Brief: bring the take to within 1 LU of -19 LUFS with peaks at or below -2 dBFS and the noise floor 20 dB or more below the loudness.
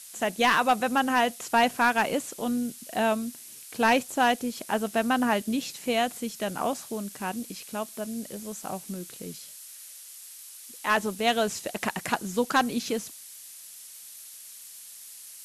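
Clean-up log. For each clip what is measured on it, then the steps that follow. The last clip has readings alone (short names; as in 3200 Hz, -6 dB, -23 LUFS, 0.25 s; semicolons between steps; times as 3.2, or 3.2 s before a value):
clipped 0.2%; flat tops at -14.5 dBFS; noise floor -46 dBFS; noise floor target -47 dBFS; loudness -27.0 LUFS; peak -14.5 dBFS; loudness target -19.0 LUFS
-> clip repair -14.5 dBFS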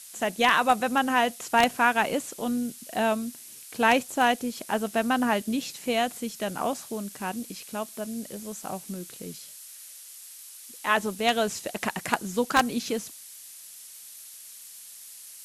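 clipped 0.0%; noise floor -46 dBFS; noise floor target -47 dBFS
-> denoiser 6 dB, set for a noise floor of -46 dBFS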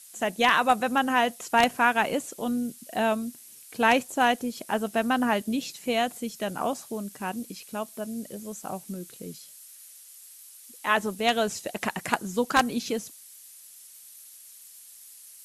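noise floor -49 dBFS; loudness -27.0 LUFS; peak -5.5 dBFS; loudness target -19.0 LUFS
-> gain +8 dB; limiter -2 dBFS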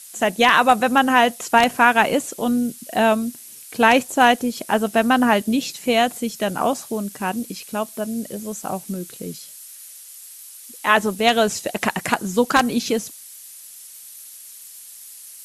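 loudness -19.5 LUFS; peak -2.0 dBFS; noise floor -41 dBFS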